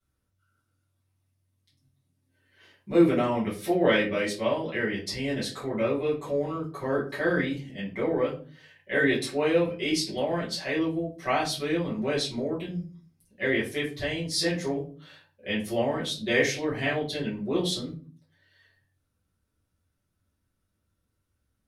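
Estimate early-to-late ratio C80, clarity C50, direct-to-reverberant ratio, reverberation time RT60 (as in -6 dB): 14.0 dB, 8.5 dB, -10.0 dB, 0.40 s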